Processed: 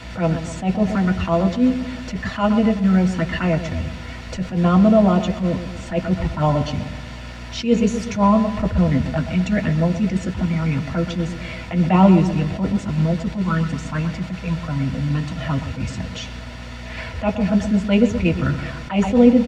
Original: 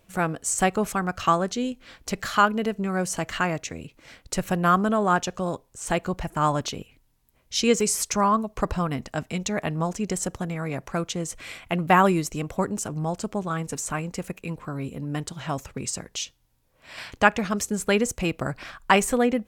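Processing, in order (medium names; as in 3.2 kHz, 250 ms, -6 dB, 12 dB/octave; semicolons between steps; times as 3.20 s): treble shelf 5.6 kHz +3 dB; in parallel at -1.5 dB: compression 8:1, threshold -34 dBFS, peak gain reduction 22.5 dB; on the sum: touch-sensitive flanger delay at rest 3.5 ms, full sweep at -18 dBFS; word length cut 6-bit, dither triangular; hum 60 Hz, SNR 21 dB; tape spacing loss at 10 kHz 25 dB; doubling 12 ms -12 dB; filtered feedback delay 125 ms, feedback 54%, level -10.5 dB; reverberation RT60 0.10 s, pre-delay 3 ms, DRR 4 dB; attacks held to a fixed rise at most 170 dB/s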